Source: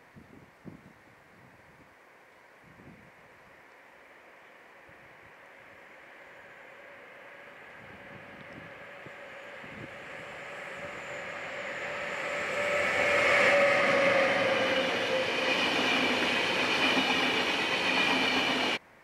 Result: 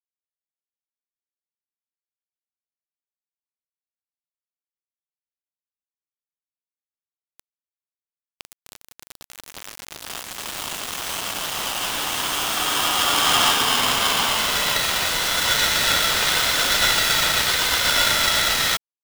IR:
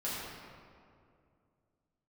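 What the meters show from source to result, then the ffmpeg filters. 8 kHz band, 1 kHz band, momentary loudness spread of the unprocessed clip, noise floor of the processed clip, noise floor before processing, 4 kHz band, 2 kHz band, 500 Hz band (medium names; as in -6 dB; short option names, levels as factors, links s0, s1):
+22.0 dB, +8.0 dB, 21 LU, under -85 dBFS, -57 dBFS, +12.0 dB, +4.5 dB, -3.0 dB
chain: -filter_complex "[0:a]highpass=1300,aemphasis=mode=production:type=riaa,asplit=2[s0][s1];[s1]acompressor=threshold=0.0178:ratio=6,volume=1.41[s2];[s0][s2]amix=inputs=2:normalize=0,acrusher=bits=4:mix=0:aa=0.000001,aeval=exprs='val(0)*sgn(sin(2*PI*1000*n/s))':c=same,volume=1.41"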